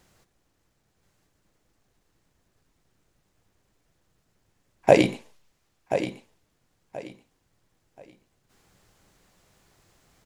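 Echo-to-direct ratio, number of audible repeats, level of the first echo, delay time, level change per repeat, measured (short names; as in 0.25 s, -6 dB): -9.5 dB, 3, -10.0 dB, 1.03 s, -12.0 dB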